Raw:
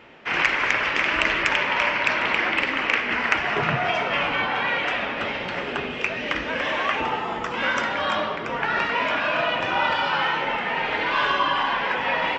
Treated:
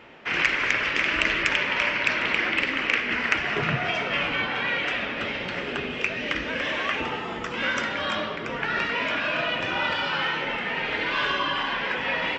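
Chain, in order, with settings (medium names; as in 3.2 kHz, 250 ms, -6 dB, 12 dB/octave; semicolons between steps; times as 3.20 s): dynamic bell 870 Hz, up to -8 dB, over -38 dBFS, Q 1.2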